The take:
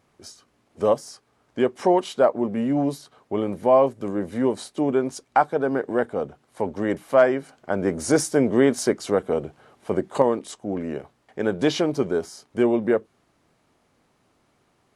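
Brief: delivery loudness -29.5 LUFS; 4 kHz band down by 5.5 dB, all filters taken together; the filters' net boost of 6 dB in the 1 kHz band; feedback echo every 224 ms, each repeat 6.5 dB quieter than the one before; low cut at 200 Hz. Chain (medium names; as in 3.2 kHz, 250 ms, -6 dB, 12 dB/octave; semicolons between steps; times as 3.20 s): high-pass 200 Hz; peaking EQ 1 kHz +8.5 dB; peaking EQ 4 kHz -8.5 dB; feedback delay 224 ms, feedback 47%, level -6.5 dB; trim -9 dB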